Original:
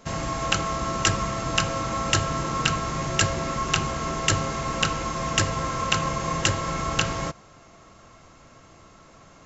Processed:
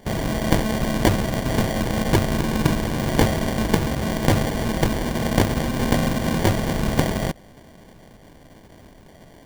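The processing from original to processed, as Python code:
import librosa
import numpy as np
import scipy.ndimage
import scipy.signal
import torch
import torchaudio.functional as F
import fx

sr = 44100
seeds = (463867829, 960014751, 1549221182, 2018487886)

y = fx.rattle_buzz(x, sr, strikes_db=-33.0, level_db=-17.0)
y = fx.sample_hold(y, sr, seeds[0], rate_hz=1300.0, jitter_pct=0)
y = y * librosa.db_to_amplitude(4.0)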